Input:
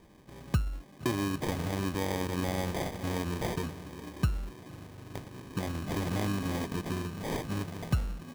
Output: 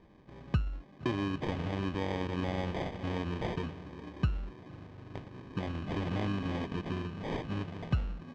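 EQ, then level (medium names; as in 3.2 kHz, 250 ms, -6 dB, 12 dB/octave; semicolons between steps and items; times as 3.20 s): dynamic bell 2.9 kHz, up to +5 dB, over -57 dBFS, Q 3.1; distance through air 150 m; treble shelf 7.8 kHz -8.5 dB; -1.5 dB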